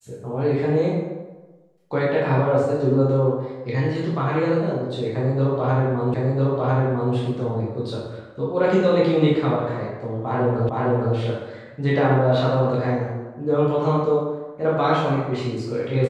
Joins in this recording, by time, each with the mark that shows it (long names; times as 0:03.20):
0:06.14: the same again, the last 1 s
0:10.69: the same again, the last 0.46 s